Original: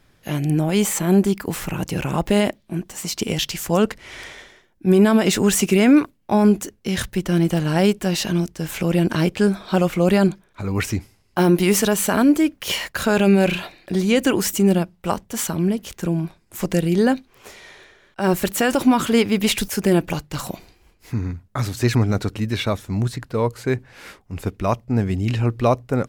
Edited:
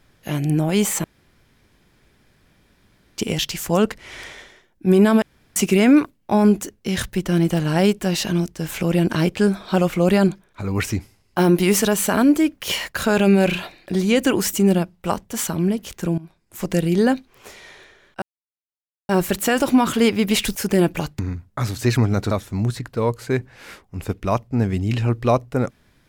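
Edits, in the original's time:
1.04–3.18 room tone
5.22–5.56 room tone
16.18–16.79 fade in linear, from -18.5 dB
18.22 insert silence 0.87 s
20.32–21.17 cut
22.29–22.68 cut

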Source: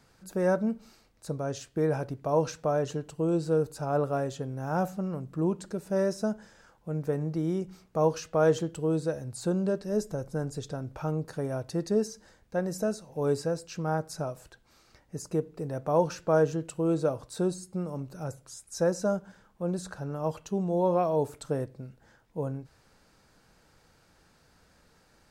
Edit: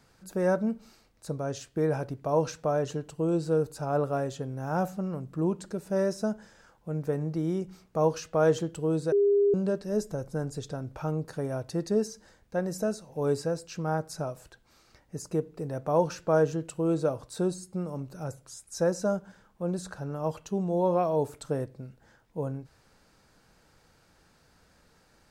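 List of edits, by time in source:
9.12–9.54 bleep 404 Hz -19 dBFS

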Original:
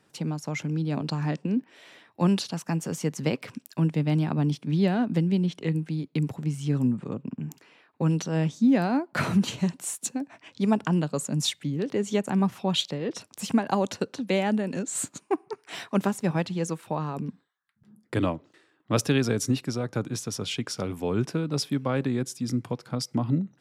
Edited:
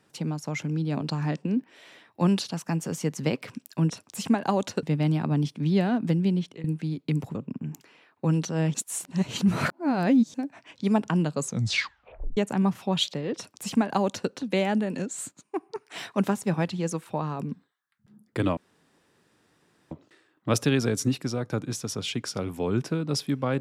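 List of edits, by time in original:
5.42–5.71 fade out, to -17.5 dB
6.42–7.12 cut
8.51–10.11 reverse
11.18 tape stop 0.96 s
13.14–14.07 copy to 3.9
14.78–15.52 dip -10.5 dB, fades 0.30 s
18.34 insert room tone 1.34 s

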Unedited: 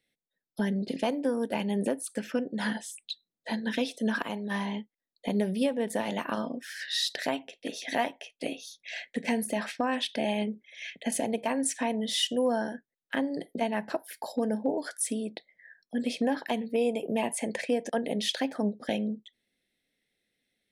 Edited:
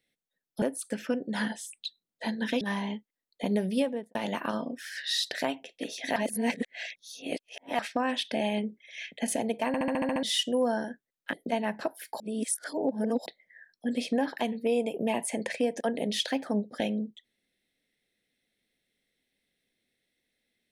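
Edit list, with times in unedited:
0.62–1.87 cut
3.86–4.45 cut
5.67–5.99 studio fade out
8–9.63 reverse
11.51 stutter in place 0.07 s, 8 plays
13.17–13.42 cut
14.29–15.35 reverse

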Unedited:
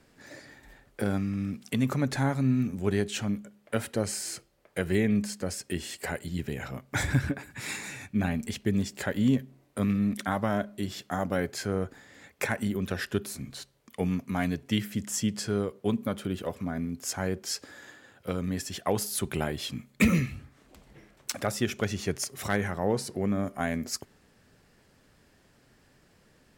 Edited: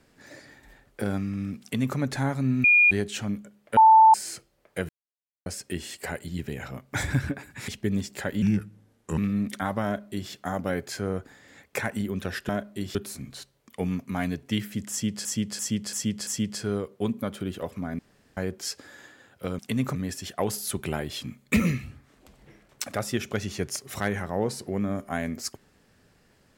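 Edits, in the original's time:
1.62–1.98 copy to 18.43
2.64–2.91 bleep 2430 Hz -14 dBFS
3.77–4.14 bleep 884 Hz -10.5 dBFS
4.89–5.46 mute
7.68–8.5 cut
9.24–9.84 speed 79%
10.51–10.97 copy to 13.15
15.11–15.45 loop, 5 plays
16.83–17.21 room tone

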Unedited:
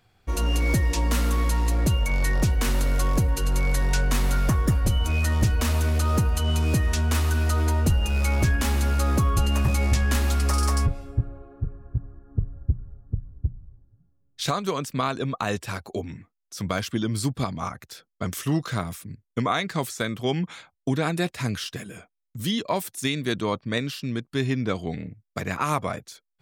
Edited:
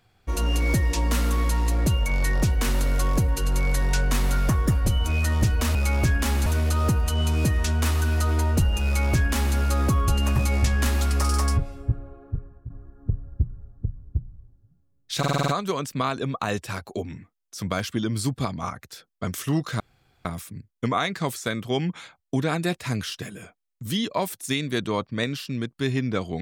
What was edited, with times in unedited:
8.14–8.85 copy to 5.75
11.5–11.99 fade out equal-power, to -13.5 dB
14.47 stutter 0.05 s, 7 plays
18.79 insert room tone 0.45 s

